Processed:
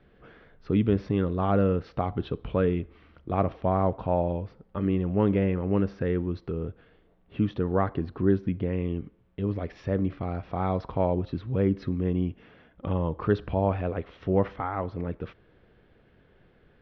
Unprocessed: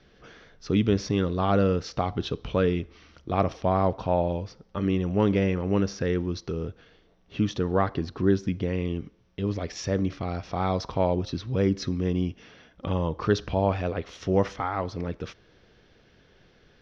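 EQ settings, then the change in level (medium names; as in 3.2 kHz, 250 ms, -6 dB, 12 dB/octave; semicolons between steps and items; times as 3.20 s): distance through air 450 m; 0.0 dB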